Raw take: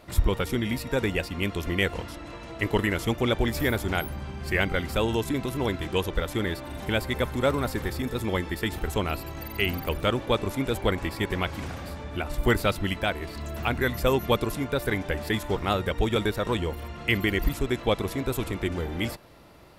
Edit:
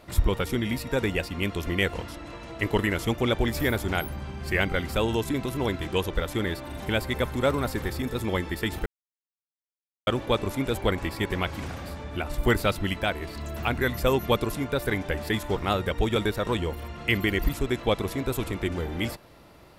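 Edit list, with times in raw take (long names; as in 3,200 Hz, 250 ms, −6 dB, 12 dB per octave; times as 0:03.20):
0:08.86–0:10.07: silence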